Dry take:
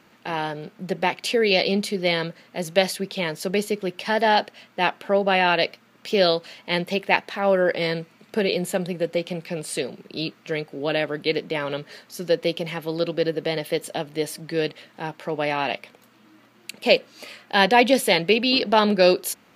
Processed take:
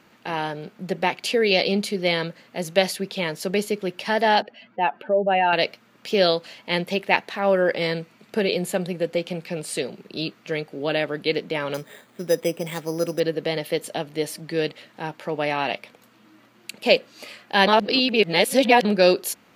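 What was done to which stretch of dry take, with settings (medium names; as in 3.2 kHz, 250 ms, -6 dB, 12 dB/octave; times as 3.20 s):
4.42–5.53 s: spectral contrast enhancement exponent 1.9
11.74–13.20 s: careless resampling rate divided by 8×, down filtered, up hold
17.67–18.85 s: reverse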